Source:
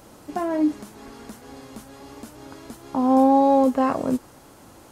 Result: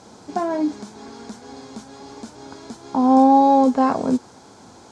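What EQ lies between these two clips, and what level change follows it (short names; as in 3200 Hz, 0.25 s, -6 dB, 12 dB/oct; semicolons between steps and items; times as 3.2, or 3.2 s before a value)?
speaker cabinet 120–7100 Hz, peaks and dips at 140 Hz -8 dB, 310 Hz -8 dB, 570 Hz -8 dB, 1200 Hz -7 dB, 1900 Hz -8 dB, 2800 Hz -10 dB; +7.0 dB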